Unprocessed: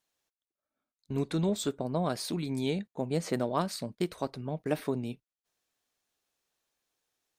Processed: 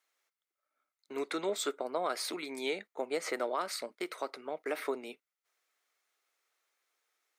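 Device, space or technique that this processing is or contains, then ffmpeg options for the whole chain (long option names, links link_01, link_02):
laptop speaker: -af "highpass=frequency=360:width=0.5412,highpass=frequency=360:width=1.3066,equalizer=frequency=1300:width_type=o:width=0.33:gain=9.5,equalizer=frequency=2100:width_type=o:width=0.31:gain=10.5,alimiter=limit=-22dB:level=0:latency=1:release=69"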